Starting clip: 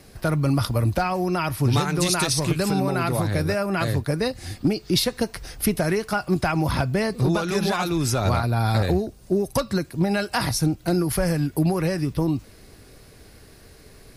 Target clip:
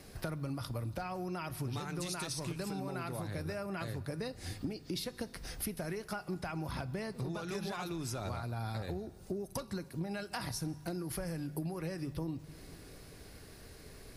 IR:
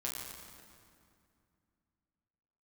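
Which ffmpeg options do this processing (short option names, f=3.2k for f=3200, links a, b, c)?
-filter_complex "[0:a]bandreject=f=49.85:t=h:w=4,bandreject=f=99.7:t=h:w=4,bandreject=f=149.55:t=h:w=4,acompressor=threshold=-33dB:ratio=5,asplit=2[a][b];[1:a]atrim=start_sample=2205,asetrate=36603,aresample=44100[c];[b][c]afir=irnorm=-1:irlink=0,volume=-18dB[d];[a][d]amix=inputs=2:normalize=0,volume=-5dB"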